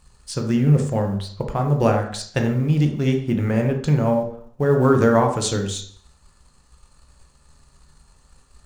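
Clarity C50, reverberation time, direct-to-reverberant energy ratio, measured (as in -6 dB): 7.0 dB, 0.55 s, 3.0 dB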